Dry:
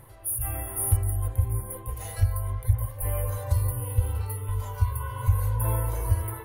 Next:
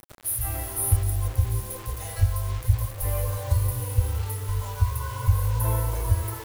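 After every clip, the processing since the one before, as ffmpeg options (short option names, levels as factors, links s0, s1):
-af "acrusher=bits=6:mix=0:aa=0.000001,volume=1.19"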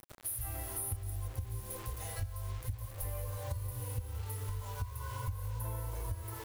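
-af "acompressor=threshold=0.0316:ratio=5,volume=0.531"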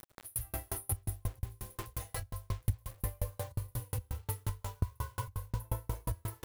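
-af "aeval=exprs='val(0)*pow(10,-40*if(lt(mod(5.6*n/s,1),2*abs(5.6)/1000),1-mod(5.6*n/s,1)/(2*abs(5.6)/1000),(mod(5.6*n/s,1)-2*abs(5.6)/1000)/(1-2*abs(5.6)/1000))/20)':c=same,volume=3.16"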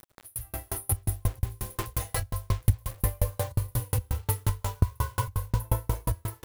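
-af "dynaudnorm=f=320:g=5:m=2.99"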